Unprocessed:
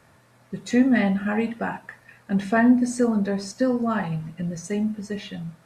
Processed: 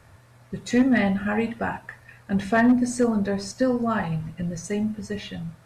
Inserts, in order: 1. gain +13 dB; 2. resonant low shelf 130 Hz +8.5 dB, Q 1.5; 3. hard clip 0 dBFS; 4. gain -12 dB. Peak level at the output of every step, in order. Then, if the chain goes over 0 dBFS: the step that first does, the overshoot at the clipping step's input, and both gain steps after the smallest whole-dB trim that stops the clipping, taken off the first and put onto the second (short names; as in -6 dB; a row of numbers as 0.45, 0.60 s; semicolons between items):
+5.5, +3.5, 0.0, -12.0 dBFS; step 1, 3.5 dB; step 1 +9 dB, step 4 -8 dB